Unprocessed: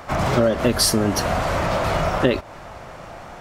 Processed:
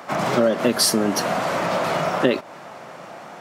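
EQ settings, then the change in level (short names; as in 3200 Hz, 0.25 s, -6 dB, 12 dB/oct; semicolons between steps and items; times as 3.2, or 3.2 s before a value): HPF 160 Hz 24 dB/oct; 0.0 dB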